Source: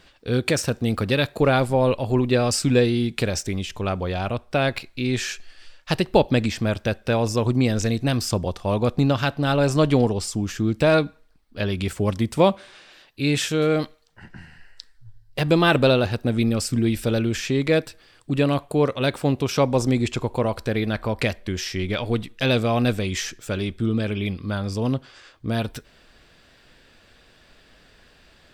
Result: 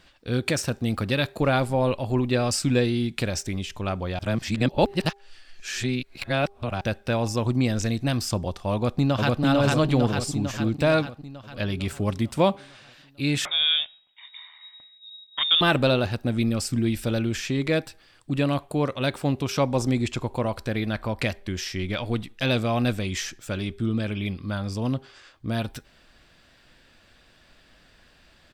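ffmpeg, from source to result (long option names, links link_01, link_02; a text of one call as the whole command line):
ffmpeg -i in.wav -filter_complex "[0:a]asplit=2[link_01][link_02];[link_02]afade=type=in:start_time=8.73:duration=0.01,afade=type=out:start_time=9.41:duration=0.01,aecho=0:1:450|900|1350|1800|2250|2700|3150|3600|4050:0.944061|0.566437|0.339862|0.203917|0.12235|0.0734102|0.0440461|0.0264277|0.0158566[link_03];[link_01][link_03]amix=inputs=2:normalize=0,asettb=1/sr,asplit=3[link_04][link_05][link_06];[link_04]atrim=end=13.454[link_07];[link_05]atrim=start=13.45:end=15.61,asetpts=PTS-STARTPTS,afade=type=in:duration=0.004:curve=qsin,afade=type=out:start_time=2.156:duration=0.004:curve=qsin,lowpass=frequency=3200:width_type=q:width=0.5098,lowpass=frequency=3200:width_type=q:width=0.6013,lowpass=frequency=3200:width_type=q:width=0.9,lowpass=frequency=3200:width_type=q:width=2.563,afreqshift=-3800[link_08];[link_06]atrim=start=15.606[link_09];[link_07][link_08]acrossfade=duration=0.004:curve1=hsin:curve2=qsin[link_10];[link_10][link_09]acrossfade=duration=0.004:curve1=qsin:curve2=hsin,asplit=3[link_11][link_12][link_13];[link_11]atrim=end=4.192[link_14];[link_12]atrim=start=4.188:end=6.812,asetpts=PTS-STARTPTS,areverse[link_15];[link_13]atrim=start=6.808[link_16];[link_14][link_15]acrossfade=duration=0.004:curve1=hsin:curve2=hsin[link_17];[link_17][link_16]acrossfade=duration=0.004:curve1=hsin:curve2=hsin,equalizer=frequency=440:width=4.5:gain=-5.5,bandreject=frequency=400.1:width_type=h:width=4,bandreject=frequency=800.2:width_type=h:width=4,volume=-2.5dB" out.wav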